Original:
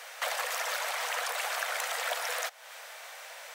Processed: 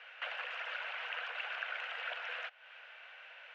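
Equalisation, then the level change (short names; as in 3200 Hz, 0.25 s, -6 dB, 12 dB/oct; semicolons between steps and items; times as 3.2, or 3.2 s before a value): ladder low-pass 3000 Hz, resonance 70%; low shelf 370 Hz +6.5 dB; bell 1500 Hz +10.5 dB 0.29 oct; -3.5 dB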